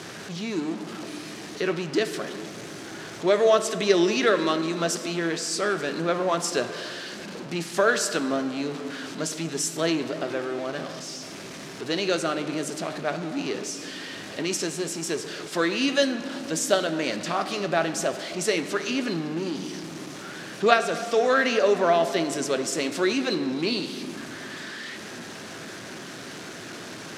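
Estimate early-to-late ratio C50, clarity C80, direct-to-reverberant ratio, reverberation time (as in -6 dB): 10.5 dB, 11.5 dB, 8.0 dB, 2.5 s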